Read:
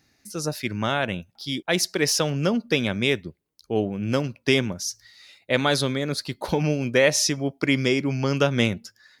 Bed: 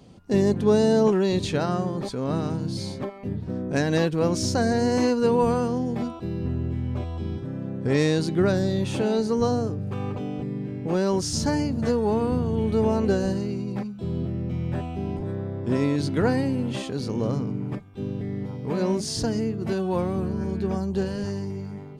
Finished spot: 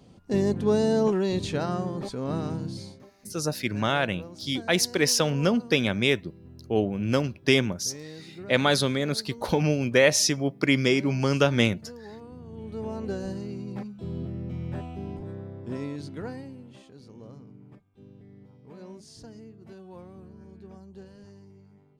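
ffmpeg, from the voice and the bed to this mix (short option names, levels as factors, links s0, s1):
-filter_complex "[0:a]adelay=3000,volume=0.944[s0];[1:a]volume=3.76,afade=t=out:st=2.6:d=0.43:silence=0.141254,afade=t=in:st=12.36:d=1.4:silence=0.177828,afade=t=out:st=14.81:d=1.85:silence=0.188365[s1];[s0][s1]amix=inputs=2:normalize=0"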